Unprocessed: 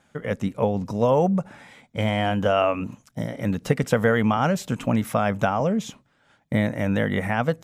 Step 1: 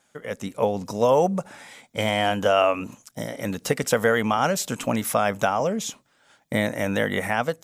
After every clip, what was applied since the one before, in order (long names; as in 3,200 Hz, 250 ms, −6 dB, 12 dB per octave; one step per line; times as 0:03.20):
bass and treble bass −9 dB, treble +9 dB
automatic gain control gain up to 7 dB
level −4 dB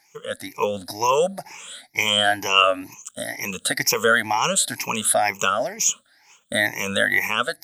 rippled gain that drifts along the octave scale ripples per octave 0.76, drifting +2.1 Hz, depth 22 dB
tilt shelving filter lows −7.5 dB
level −3 dB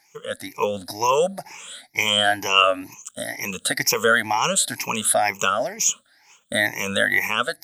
no processing that can be heard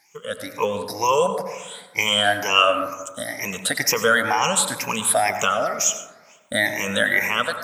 dense smooth reverb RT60 1.2 s, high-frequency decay 0.25×, pre-delay 80 ms, DRR 7.5 dB